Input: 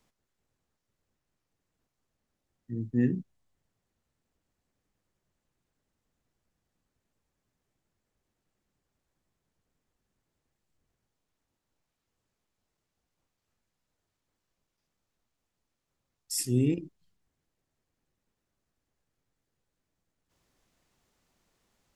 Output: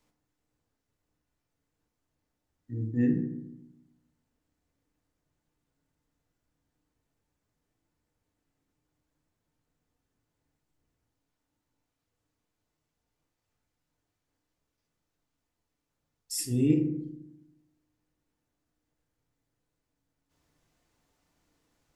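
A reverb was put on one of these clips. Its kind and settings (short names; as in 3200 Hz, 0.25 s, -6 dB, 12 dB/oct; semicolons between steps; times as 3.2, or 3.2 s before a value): FDN reverb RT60 0.86 s, low-frequency decay 1.35×, high-frequency decay 0.4×, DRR 1.5 dB; gain -2.5 dB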